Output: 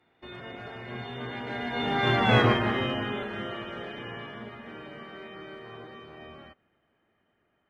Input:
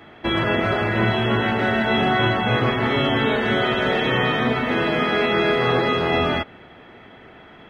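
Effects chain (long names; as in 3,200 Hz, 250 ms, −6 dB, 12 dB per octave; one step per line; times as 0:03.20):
source passing by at 0:02.36, 26 m/s, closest 5.4 metres
harmonic generator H 7 −34 dB, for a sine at −9 dBFS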